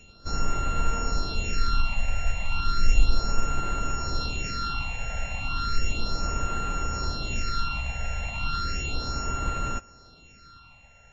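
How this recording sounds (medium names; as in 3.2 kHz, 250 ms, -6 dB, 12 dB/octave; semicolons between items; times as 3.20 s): a buzz of ramps at a fixed pitch in blocks of 32 samples; phasing stages 6, 0.34 Hz, lowest notch 320–4900 Hz; MP3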